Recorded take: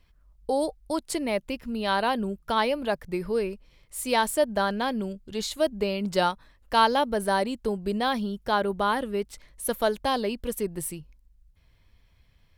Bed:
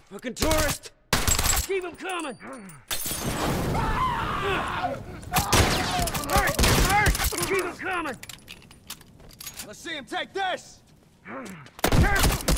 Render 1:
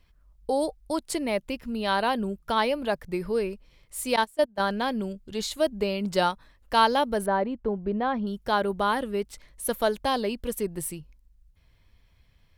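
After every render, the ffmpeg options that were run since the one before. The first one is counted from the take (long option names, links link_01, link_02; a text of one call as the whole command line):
ffmpeg -i in.wav -filter_complex "[0:a]asettb=1/sr,asplit=3[link_01][link_02][link_03];[link_01]atrim=end=4.164[link_04];[link_02]atrim=start=4.16:end=4.6,asetpts=PTS-STARTPTS,afade=type=in:duration=0.004:curve=qsin,afade=type=out:start_time=0.436:duration=0.004:curve=qsin,agate=range=-22dB:threshold=-24dB:ratio=16:release=100:detection=peak[link_05];[link_03]atrim=start=4.596[link_06];[link_04][link_05]acrossfade=duration=0.004:curve1=hsin:curve2=qsin[link_07];[link_07][link_06]acrossfade=duration=0.004:curve1=qsin:curve2=hsin,asettb=1/sr,asplit=3[link_08][link_09][link_10];[link_08]atrim=end=7.264[link_11];[link_09]atrim=start=7.26:end=8.27,asetpts=PTS-STARTPTS,afade=type=in:duration=0.004:curve=qsin,afade=type=out:start_time=1.006:duration=0.004:curve=qsin,lowpass=1600[link_12];[link_10]atrim=start=8.266[link_13];[link_11][link_12]acrossfade=duration=0.004:curve1=hsin:curve2=qsin[link_14];[link_14][link_13]acrossfade=duration=0.004:curve1=qsin:curve2=hsin" out.wav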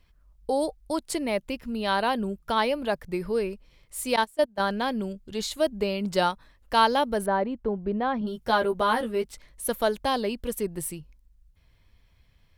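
ffmpeg -i in.wav -filter_complex "[0:a]asettb=1/sr,asplit=3[link_01][link_02][link_03];[link_01]atrim=end=8.204[link_04];[link_02]atrim=start=8.2:end=9.27,asetpts=PTS-STARTPTS,afade=type=in:duration=0.004:curve=qsin,afade=type=out:start_time=1.066:duration=0.004:curve=qsin,asplit=2[link_05][link_06];[link_06]adelay=13,volume=-3.5dB[link_07];[link_05][link_07]amix=inputs=2:normalize=0,atrim=end_sample=47187[link_08];[link_03]atrim=start=9.266[link_09];[link_04][link_08]acrossfade=duration=0.004:curve1=hsin:curve2=qsin[link_10];[link_10][link_09]acrossfade=duration=0.004:curve1=qsin:curve2=hsin" out.wav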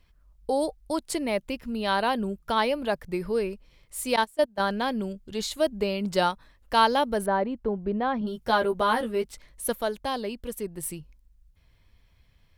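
ffmpeg -i in.wav -filter_complex "[0:a]asplit=3[link_01][link_02][link_03];[link_01]atrim=end=9.732[link_04];[link_02]atrim=start=9.728:end=10.832,asetpts=PTS-STARTPTS,volume=-4dB[link_05];[link_03]atrim=start=10.828[link_06];[link_04][link_05]acrossfade=duration=0.004:curve1=hsin:curve2=hsin[link_07];[link_07][link_06]acrossfade=duration=0.004:curve1=hsin:curve2=hsin" out.wav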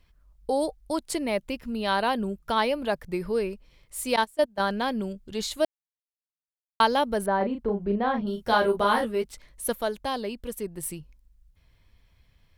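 ffmpeg -i in.wav -filter_complex "[0:a]asettb=1/sr,asplit=3[link_01][link_02][link_03];[link_01]atrim=end=7.374[link_04];[link_02]atrim=start=7.37:end=9.05,asetpts=PTS-STARTPTS,afade=type=in:duration=0.004:curve=qsin,afade=type=out:start_time=1.676:duration=0.004:curve=qsin,asplit=2[link_05][link_06];[link_06]adelay=35,volume=-5dB[link_07];[link_05][link_07]amix=inputs=2:normalize=0,atrim=end_sample=74088[link_08];[link_03]atrim=start=9.046[link_09];[link_04][link_08]acrossfade=duration=0.004:curve1=hsin:curve2=qsin[link_10];[link_10][link_09]acrossfade=duration=0.004:curve1=qsin:curve2=hsin,asplit=3[link_11][link_12][link_13];[link_11]atrim=end=5.65,asetpts=PTS-STARTPTS,afade=type=out:start_time=5.646:duration=0.004:curve=hsin[link_14];[link_12]atrim=start=5.65:end=6.8,asetpts=PTS-STARTPTS,volume=0[link_15];[link_13]atrim=start=6.8,asetpts=PTS-STARTPTS,afade=type=in:duration=0.004:curve=hsin[link_16];[link_14][link_15][link_16]concat=n=3:v=0:a=1" out.wav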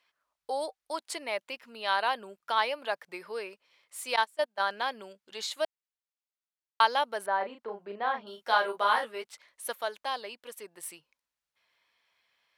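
ffmpeg -i in.wav -af "highpass=810,highshelf=frequency=7700:gain=-10.5" out.wav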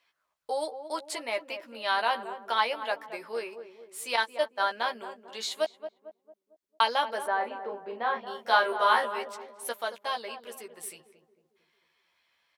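ffmpeg -i in.wav -filter_complex "[0:a]asplit=2[link_01][link_02];[link_02]adelay=13,volume=-5dB[link_03];[link_01][link_03]amix=inputs=2:normalize=0,asplit=2[link_04][link_05];[link_05]adelay=225,lowpass=frequency=800:poles=1,volume=-8.5dB,asplit=2[link_06][link_07];[link_07]adelay=225,lowpass=frequency=800:poles=1,volume=0.53,asplit=2[link_08][link_09];[link_09]adelay=225,lowpass=frequency=800:poles=1,volume=0.53,asplit=2[link_10][link_11];[link_11]adelay=225,lowpass=frequency=800:poles=1,volume=0.53,asplit=2[link_12][link_13];[link_13]adelay=225,lowpass=frequency=800:poles=1,volume=0.53,asplit=2[link_14][link_15];[link_15]adelay=225,lowpass=frequency=800:poles=1,volume=0.53[link_16];[link_04][link_06][link_08][link_10][link_12][link_14][link_16]amix=inputs=7:normalize=0" out.wav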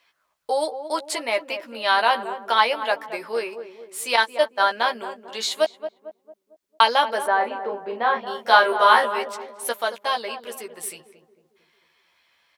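ffmpeg -i in.wav -af "volume=8dB" out.wav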